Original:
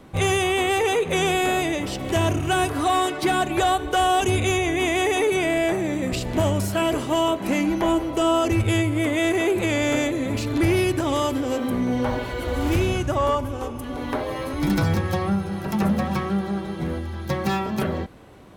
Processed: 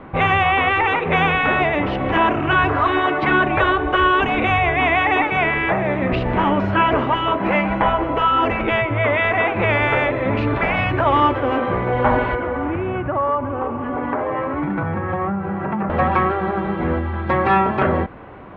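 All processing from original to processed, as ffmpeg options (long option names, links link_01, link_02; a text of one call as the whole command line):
ffmpeg -i in.wav -filter_complex "[0:a]asettb=1/sr,asplit=3[link_01][link_02][link_03];[link_01]atrim=end=12.354[link_04];[link_02]atrim=start=12.35:end=15.9,asetpts=PTS-STARTPTS,afade=type=in:duration=0.004:curve=qsin,afade=type=out:start_time=3.546:duration=0.004:curve=qsin,highpass=100,lowpass=2100,acompressor=threshold=-28dB:ratio=4:attack=3.2:release=140:knee=1:detection=peak[link_05];[link_03]atrim=start=15.896[link_06];[link_04][link_05]acrossfade=duration=0.004:curve1=hsin:curve2=qsin[link_07];[link_07][link_06]acrossfade=duration=0.004:curve1=qsin:curve2=hsin,afftfilt=real='re*lt(hypot(re,im),0.501)':imag='im*lt(hypot(re,im),0.501)':win_size=1024:overlap=0.75,lowpass=frequency=2600:width=0.5412,lowpass=frequency=2600:width=1.3066,equalizer=frequency=1100:width_type=o:width=1.7:gain=6.5,volume=6.5dB" out.wav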